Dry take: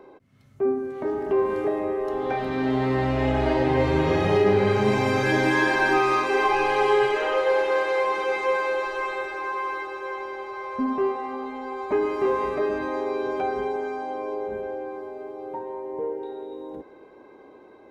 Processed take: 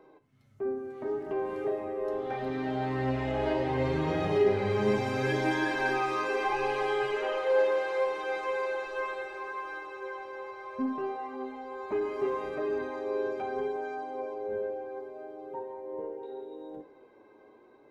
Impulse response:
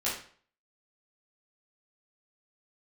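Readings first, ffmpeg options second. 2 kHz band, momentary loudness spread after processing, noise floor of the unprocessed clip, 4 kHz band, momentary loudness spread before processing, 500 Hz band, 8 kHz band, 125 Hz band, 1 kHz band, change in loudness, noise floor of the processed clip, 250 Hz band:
−8.0 dB, 13 LU, −50 dBFS, −7.5 dB, 14 LU, −6.5 dB, can't be measured, −7.0 dB, −8.0 dB, −7.0 dB, −58 dBFS, −7.5 dB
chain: -filter_complex "[0:a]flanger=delay=6.3:depth=3.3:regen=41:speed=0.72:shape=sinusoidal,asplit=2[link_01][link_02];[1:a]atrim=start_sample=2205[link_03];[link_02][link_03]afir=irnorm=-1:irlink=0,volume=-16dB[link_04];[link_01][link_04]amix=inputs=2:normalize=0,volume=-5.5dB"

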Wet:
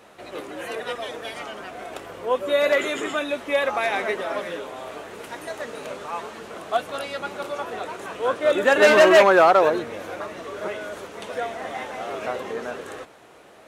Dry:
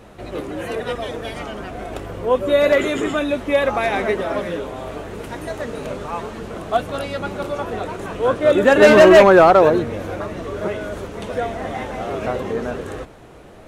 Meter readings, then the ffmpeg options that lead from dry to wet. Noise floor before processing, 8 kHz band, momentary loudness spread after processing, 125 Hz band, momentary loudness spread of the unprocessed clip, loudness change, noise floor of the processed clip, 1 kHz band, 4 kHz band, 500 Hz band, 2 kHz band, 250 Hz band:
−42 dBFS, can't be measured, 21 LU, −15.0 dB, 20 LU, −4.5 dB, −49 dBFS, −3.0 dB, −1.0 dB, −5.5 dB, −1.5 dB, −9.5 dB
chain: -af "highpass=frequency=720:poles=1,volume=-1dB"

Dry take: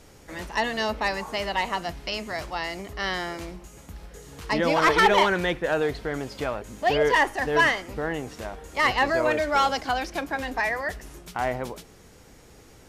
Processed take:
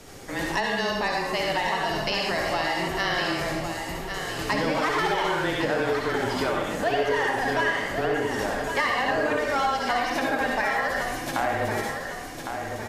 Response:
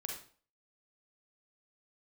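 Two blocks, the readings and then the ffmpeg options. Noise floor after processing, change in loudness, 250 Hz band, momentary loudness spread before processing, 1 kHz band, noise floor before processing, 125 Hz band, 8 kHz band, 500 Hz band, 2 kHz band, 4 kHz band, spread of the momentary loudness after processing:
−35 dBFS, −1.0 dB, +1.5 dB, 17 LU, −0.5 dB, −51 dBFS, +1.5 dB, +2.5 dB, 0.0 dB, 0.0 dB, +1.0 dB, 7 LU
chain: -filter_complex "[0:a]equalizer=frequency=61:width_type=o:width=1.1:gain=-7.5,afreqshift=-21[link_01];[1:a]atrim=start_sample=2205,asetrate=30870,aresample=44100[link_02];[link_01][link_02]afir=irnorm=-1:irlink=0,acompressor=threshold=-31dB:ratio=5,aecho=1:1:1107|2214|3321|4428|5535:0.447|0.201|0.0905|0.0407|0.0183,volume=7.5dB"

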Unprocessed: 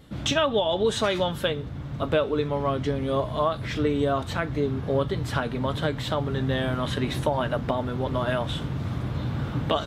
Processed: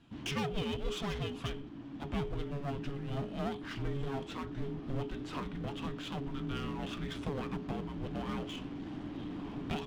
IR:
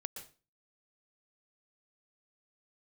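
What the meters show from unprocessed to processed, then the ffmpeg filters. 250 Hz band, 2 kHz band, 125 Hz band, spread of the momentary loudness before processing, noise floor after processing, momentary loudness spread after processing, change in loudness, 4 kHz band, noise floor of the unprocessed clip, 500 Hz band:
−9.0 dB, −13.0 dB, −11.5 dB, 6 LU, −46 dBFS, 5 LU, −12.5 dB, −12.5 dB, −35 dBFS, −16.0 dB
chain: -af "highpass=130,lowpass=5800,aeval=exprs='clip(val(0),-1,0.0251)':channel_layout=same,afreqshift=-420,volume=-8.5dB"

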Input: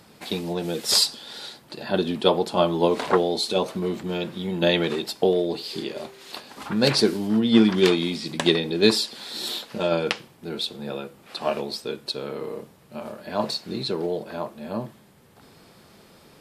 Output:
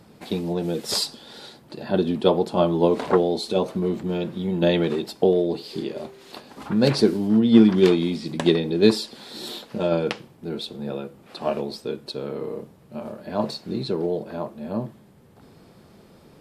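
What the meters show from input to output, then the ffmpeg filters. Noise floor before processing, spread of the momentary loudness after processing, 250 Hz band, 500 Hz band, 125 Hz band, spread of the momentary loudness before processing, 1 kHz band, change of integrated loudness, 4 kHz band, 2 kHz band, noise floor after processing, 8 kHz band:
−53 dBFS, 17 LU, +3.0 dB, +1.5 dB, +3.5 dB, 17 LU, −1.5 dB, +1.0 dB, −5.5 dB, −4.5 dB, −52 dBFS, −6.0 dB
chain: -af "tiltshelf=frequency=820:gain=5,volume=-1dB"

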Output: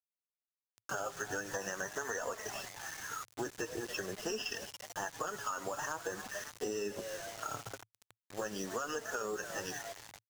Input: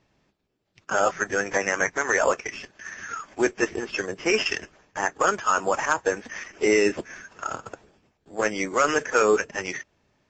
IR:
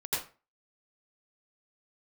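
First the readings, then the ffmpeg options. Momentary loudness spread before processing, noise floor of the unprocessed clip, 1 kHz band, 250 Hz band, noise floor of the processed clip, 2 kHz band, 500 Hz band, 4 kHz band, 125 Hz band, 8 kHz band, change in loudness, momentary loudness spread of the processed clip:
15 LU, −71 dBFS, −15.0 dB, −15.0 dB, below −85 dBFS, −15.0 dB, −15.5 dB, −10.0 dB, −8.5 dB, −9.0 dB, −15.0 dB, 5 LU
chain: -filter_complex "[0:a]asuperstop=centerf=2200:order=8:qfactor=3,asplit=6[link_01][link_02][link_03][link_04][link_05][link_06];[link_02]adelay=280,afreqshift=130,volume=-16.5dB[link_07];[link_03]adelay=560,afreqshift=260,volume=-21.7dB[link_08];[link_04]adelay=840,afreqshift=390,volume=-26.9dB[link_09];[link_05]adelay=1120,afreqshift=520,volume=-32.1dB[link_10];[link_06]adelay=1400,afreqshift=650,volume=-37.3dB[link_11];[link_01][link_07][link_08][link_09][link_10][link_11]amix=inputs=6:normalize=0,asplit=2[link_12][link_13];[1:a]atrim=start_sample=2205,highshelf=frequency=3500:gain=10.5[link_14];[link_13][link_14]afir=irnorm=-1:irlink=0,volume=-28dB[link_15];[link_12][link_15]amix=inputs=2:normalize=0,alimiter=limit=-12.5dB:level=0:latency=1:release=77,flanger=delay=4:depth=3.5:regen=47:speed=0.45:shape=triangular,acrusher=bits=6:mix=0:aa=0.000001,equalizer=frequency=6400:width=1.5:gain=4,acompressor=threshold=-30dB:ratio=6,equalizer=frequency=110:width=3.2:gain=10.5,volume=-4.5dB"

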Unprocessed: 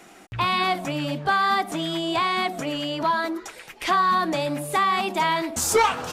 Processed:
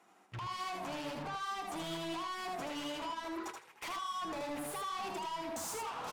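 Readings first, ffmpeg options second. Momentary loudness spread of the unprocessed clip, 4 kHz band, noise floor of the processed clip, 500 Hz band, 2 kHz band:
8 LU, −15.5 dB, −65 dBFS, −16.0 dB, −18.5 dB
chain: -filter_complex "[0:a]highpass=92,agate=range=-21dB:threshold=-35dB:ratio=16:detection=peak,equalizer=frequency=1000:width_type=o:width=0.8:gain=11,bandreject=frequency=50:width_type=h:width=6,bandreject=frequency=100:width_type=h:width=6,bandreject=frequency=150:width_type=h:width=6,acompressor=threshold=-27dB:ratio=16,alimiter=limit=-23.5dB:level=0:latency=1:release=209,asoftclip=type=tanh:threshold=-39.5dB,asplit=2[link_01][link_02];[link_02]aecho=0:1:79|158|237:0.631|0.114|0.0204[link_03];[link_01][link_03]amix=inputs=2:normalize=0" -ar 48000 -c:a libvorbis -b:a 128k

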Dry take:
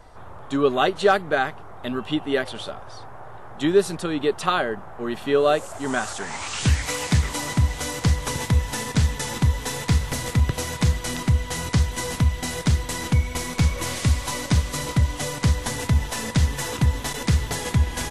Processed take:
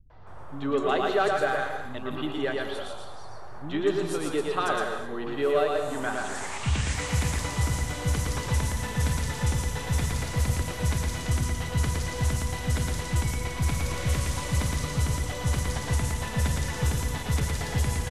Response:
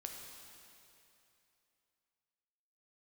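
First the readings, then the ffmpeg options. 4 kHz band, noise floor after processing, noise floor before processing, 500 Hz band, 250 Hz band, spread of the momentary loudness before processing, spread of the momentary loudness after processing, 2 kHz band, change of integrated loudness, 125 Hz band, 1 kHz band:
−5.5 dB, −36 dBFS, −38 dBFS, −4.5 dB, −5.5 dB, 9 LU, 7 LU, −4.0 dB, −4.5 dB, −5.0 dB, −4.0 dB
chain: -filter_complex "[0:a]aeval=exprs='0.501*(cos(1*acos(clip(val(0)/0.501,-1,1)))-cos(1*PI/2))+0.0251*(cos(5*acos(clip(val(0)/0.501,-1,1)))-cos(5*PI/2))':channel_layout=same,acrossover=split=220|4400[link_01][link_02][link_03];[link_02]adelay=100[link_04];[link_03]adelay=270[link_05];[link_01][link_04][link_05]amix=inputs=3:normalize=0,asplit=2[link_06][link_07];[1:a]atrim=start_sample=2205,afade=type=out:start_time=0.32:duration=0.01,atrim=end_sample=14553,adelay=114[link_08];[link_07][link_08]afir=irnorm=-1:irlink=0,volume=2.5dB[link_09];[link_06][link_09]amix=inputs=2:normalize=0,volume=-7.5dB"

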